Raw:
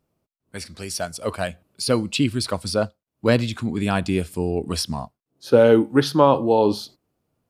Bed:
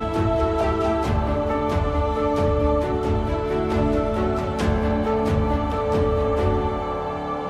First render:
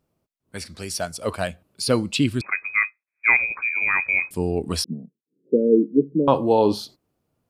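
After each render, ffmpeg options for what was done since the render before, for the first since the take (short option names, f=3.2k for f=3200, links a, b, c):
-filter_complex "[0:a]asettb=1/sr,asplit=3[a][b][c];[a]atrim=end=2.414[d];[b]atrim=start=2.41:end=4.31,asetpts=PTS-STARTPTS,afade=t=in:d=0.004:c=qsin,afade=t=out:st=1.896:d=0.004:c=qsin,lowpass=f=2.2k:t=q:w=0.5098,lowpass=f=2.2k:t=q:w=0.6013,lowpass=f=2.2k:t=q:w=0.9,lowpass=f=2.2k:t=q:w=2.563,afreqshift=-2600[e];[c]atrim=start=4.306[f];[d][e]acrossfade=d=0.004:c1=hsin:c2=qsin[g];[g][f]acrossfade=d=0.004:c1=qsin:c2=hsin,asettb=1/sr,asplit=3[h][i][j];[h]atrim=end=4.844[k];[i]atrim=start=4.84:end=6.28,asetpts=PTS-STARTPTS,afade=t=in:d=0.004:c=qsin,afade=t=out:st=1.436:d=0.004:c=qsin,asuperpass=centerf=270:order=12:qfactor=0.85[l];[j]atrim=start=6.276[m];[k][l]acrossfade=d=0.004:c1=hsin:c2=qsin[n];[n][m]acrossfade=d=0.004:c1=qsin:c2=hsin"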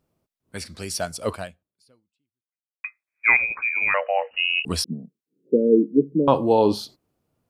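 -filter_complex "[0:a]asettb=1/sr,asplit=3[a][b][c];[a]atrim=end=3.944[d];[b]atrim=start=3.94:end=4.65,asetpts=PTS-STARTPTS,afade=t=in:d=0.004:c=qsin,afade=t=out:st=0.706:d=0.004:c=qsin,lowpass=f=2.6k:t=q:w=0.5098,lowpass=f=2.6k:t=q:w=0.6013,lowpass=f=2.6k:t=q:w=0.9,lowpass=f=2.6k:t=q:w=2.563,afreqshift=-3000[e];[c]atrim=start=4.646[f];[d][e]acrossfade=d=0.004:c1=hsin:c2=qsin[g];[g][f]acrossfade=d=0.004:c1=qsin:c2=hsin,asplit=2[h][i];[h]atrim=end=2.84,asetpts=PTS-STARTPTS,afade=t=out:st=1.31:d=1.53:c=exp[j];[i]atrim=start=2.84,asetpts=PTS-STARTPTS,afade=t=in:d=0.004:c=hsin[k];[j][k]concat=n=2:v=0:a=1"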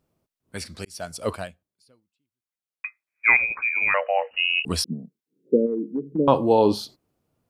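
-filter_complex "[0:a]asplit=3[a][b][c];[a]afade=t=out:st=5.65:d=0.02[d];[b]acompressor=threshold=-23dB:ratio=6:attack=3.2:release=140:knee=1:detection=peak,afade=t=in:st=5.65:d=0.02,afade=t=out:st=6.18:d=0.02[e];[c]afade=t=in:st=6.18:d=0.02[f];[d][e][f]amix=inputs=3:normalize=0,asplit=2[g][h];[g]atrim=end=0.85,asetpts=PTS-STARTPTS,afade=t=out:st=0.846:d=0.004:c=hsin[i];[h]atrim=start=0.85,asetpts=PTS-STARTPTS,afade=t=in:d=0.55:c=qsin[j];[i][j]concat=n=2:v=0:a=1"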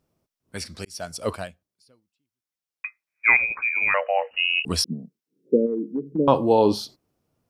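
-af "equalizer=f=5.5k:t=o:w=0.25:g=4.5"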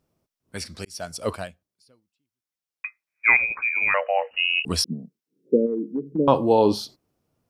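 -af anull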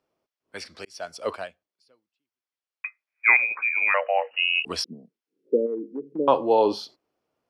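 -filter_complex "[0:a]acrossover=split=320 5000:gain=0.141 1 0.2[a][b][c];[a][b][c]amix=inputs=3:normalize=0,bandreject=f=3.8k:w=21"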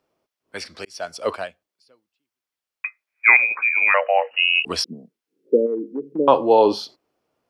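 -af "volume=5dB,alimiter=limit=-1dB:level=0:latency=1"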